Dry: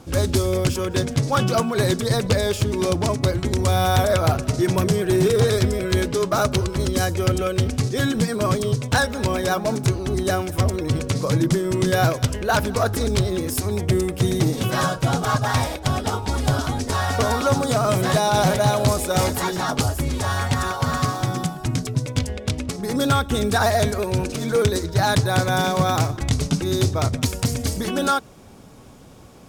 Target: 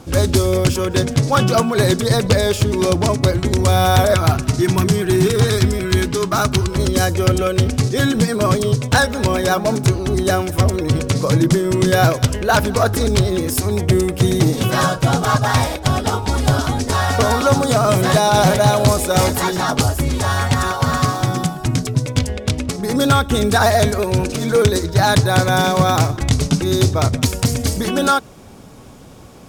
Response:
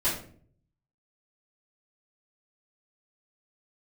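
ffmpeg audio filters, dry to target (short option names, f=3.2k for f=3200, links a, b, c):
-filter_complex "[0:a]asettb=1/sr,asplit=3[a][b][c];[a]atrim=end=4.144[d];[b]atrim=start=4.14:end=6.71,asetpts=PTS-STARTPTS,afade=t=in:d=0.004:c=qsin,afade=t=out:st=2.566:d=0.004:c=qsin,equalizer=f=540:t=o:w=0.44:g=-13[e];[c]atrim=start=6.706[f];[d][e]acrossfade=d=0.004:c1=hsin:c2=qsin[g];[g][f]acrossfade=d=0.004:c1=qsin:c2=hsin,volume=5dB"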